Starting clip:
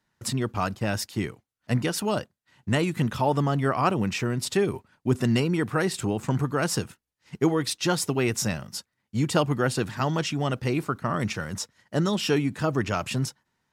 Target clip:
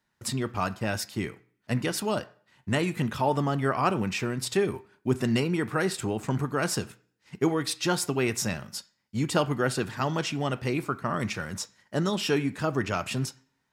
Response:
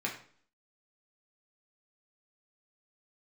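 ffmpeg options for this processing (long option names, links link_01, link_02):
-filter_complex "[0:a]asplit=2[link_01][link_02];[1:a]atrim=start_sample=2205,lowshelf=frequency=320:gain=-10[link_03];[link_02][link_03]afir=irnorm=-1:irlink=0,volume=-12dB[link_04];[link_01][link_04]amix=inputs=2:normalize=0,volume=-3dB"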